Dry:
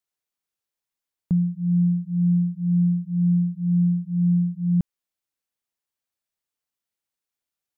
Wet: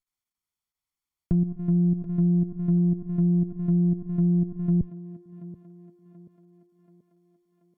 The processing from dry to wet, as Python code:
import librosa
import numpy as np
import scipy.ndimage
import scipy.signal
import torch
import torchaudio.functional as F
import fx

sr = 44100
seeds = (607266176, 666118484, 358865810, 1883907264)

y = fx.lower_of_two(x, sr, delay_ms=0.91)
y = fx.low_shelf(y, sr, hz=100.0, db=8.0)
y = fx.level_steps(y, sr, step_db=10)
y = fx.env_lowpass_down(y, sr, base_hz=380.0, full_db=-18.5)
y = fx.echo_thinned(y, sr, ms=732, feedback_pct=67, hz=300.0, wet_db=-12)